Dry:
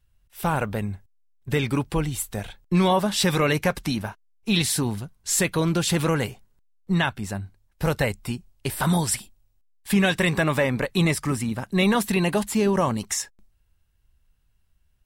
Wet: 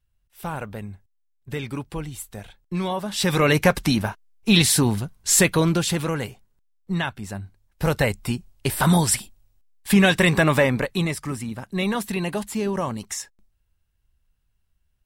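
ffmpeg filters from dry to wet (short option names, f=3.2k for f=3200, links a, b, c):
-af "volume=12.5dB,afade=t=in:st=3.05:d=0.6:silence=0.251189,afade=t=out:st=5.41:d=0.61:silence=0.375837,afade=t=in:st=7.25:d=1.1:silence=0.446684,afade=t=out:st=10.61:d=0.46:silence=0.398107"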